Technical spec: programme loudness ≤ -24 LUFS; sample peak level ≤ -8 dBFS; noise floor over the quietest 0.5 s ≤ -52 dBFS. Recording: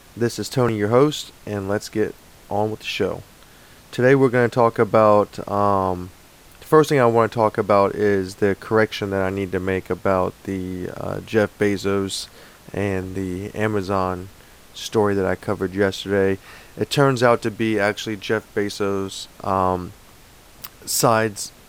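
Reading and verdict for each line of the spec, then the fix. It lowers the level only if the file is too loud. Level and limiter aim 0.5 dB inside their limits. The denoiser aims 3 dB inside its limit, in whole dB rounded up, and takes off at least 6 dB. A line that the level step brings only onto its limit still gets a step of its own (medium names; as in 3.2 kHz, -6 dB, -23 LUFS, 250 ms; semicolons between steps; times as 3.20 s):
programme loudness -21.0 LUFS: fail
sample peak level -2.5 dBFS: fail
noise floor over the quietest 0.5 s -47 dBFS: fail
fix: noise reduction 6 dB, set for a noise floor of -47 dBFS; trim -3.5 dB; peak limiter -8.5 dBFS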